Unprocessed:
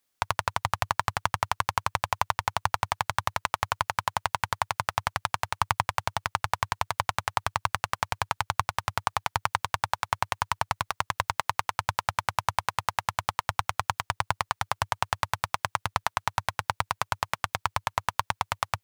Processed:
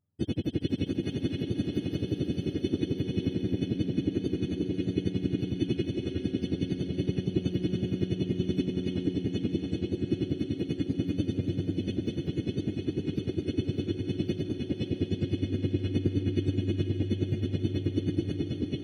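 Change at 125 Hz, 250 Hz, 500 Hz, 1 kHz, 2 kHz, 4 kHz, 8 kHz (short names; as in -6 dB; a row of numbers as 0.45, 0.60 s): +7.5 dB, +21.5 dB, +5.0 dB, under -30 dB, -18.0 dB, -7.5 dB, under -15 dB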